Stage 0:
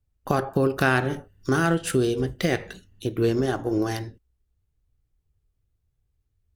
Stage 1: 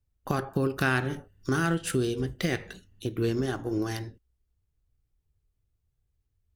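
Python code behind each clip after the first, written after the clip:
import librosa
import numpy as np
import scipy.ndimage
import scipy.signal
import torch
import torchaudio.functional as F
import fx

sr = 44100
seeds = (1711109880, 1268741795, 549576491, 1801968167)

y = fx.dynamic_eq(x, sr, hz=620.0, q=1.1, threshold_db=-35.0, ratio=4.0, max_db=-6)
y = y * librosa.db_to_amplitude(-3.0)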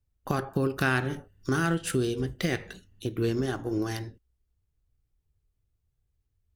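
y = x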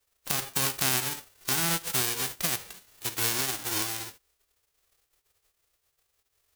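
y = fx.envelope_flatten(x, sr, power=0.1)
y = y * librosa.db_to_amplitude(-1.0)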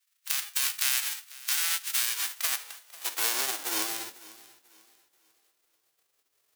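y = fx.echo_thinned(x, sr, ms=494, feedback_pct=33, hz=160.0, wet_db=-20)
y = fx.filter_sweep_highpass(y, sr, from_hz=1800.0, to_hz=200.0, start_s=1.94, end_s=4.48, q=0.92)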